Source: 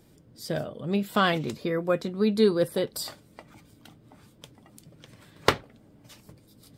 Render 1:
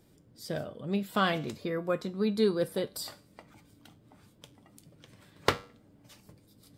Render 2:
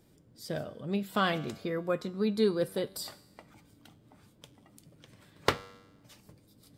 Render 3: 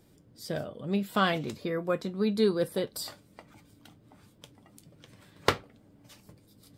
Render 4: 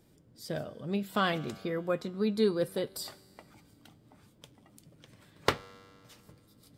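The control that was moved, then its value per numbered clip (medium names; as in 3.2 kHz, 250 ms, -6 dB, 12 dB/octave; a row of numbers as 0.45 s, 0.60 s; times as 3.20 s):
feedback comb, decay: 0.41 s, 0.99 s, 0.17 s, 2.2 s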